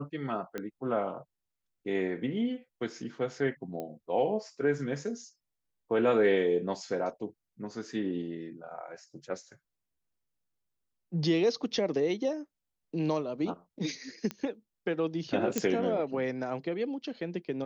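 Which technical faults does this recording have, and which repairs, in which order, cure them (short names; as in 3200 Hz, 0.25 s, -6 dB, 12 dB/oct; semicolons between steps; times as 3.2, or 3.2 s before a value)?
0.58 pop -22 dBFS
3.8 pop -25 dBFS
14.31 pop -20 dBFS
15.58 pop -13 dBFS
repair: de-click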